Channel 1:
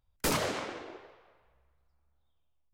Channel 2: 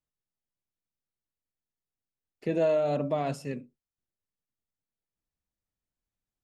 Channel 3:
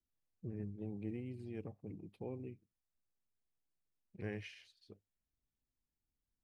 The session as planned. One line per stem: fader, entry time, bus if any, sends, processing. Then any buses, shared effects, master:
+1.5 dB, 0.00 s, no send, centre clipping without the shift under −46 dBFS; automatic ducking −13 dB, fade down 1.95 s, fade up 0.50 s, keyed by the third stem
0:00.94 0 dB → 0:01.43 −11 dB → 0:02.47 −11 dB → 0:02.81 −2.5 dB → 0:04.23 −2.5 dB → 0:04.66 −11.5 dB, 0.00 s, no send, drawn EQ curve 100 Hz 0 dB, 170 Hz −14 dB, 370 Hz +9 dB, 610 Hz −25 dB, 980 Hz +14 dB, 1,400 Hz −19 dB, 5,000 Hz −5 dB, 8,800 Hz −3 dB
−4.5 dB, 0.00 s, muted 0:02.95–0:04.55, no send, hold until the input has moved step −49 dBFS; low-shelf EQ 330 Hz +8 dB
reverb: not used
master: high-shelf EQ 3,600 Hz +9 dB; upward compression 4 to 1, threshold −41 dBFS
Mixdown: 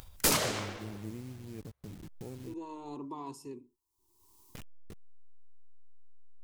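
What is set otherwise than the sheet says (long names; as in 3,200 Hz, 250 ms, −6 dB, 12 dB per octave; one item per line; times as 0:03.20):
stem 1: missing centre clipping without the shift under −46 dBFS
stem 2 0.0 dB → −6.5 dB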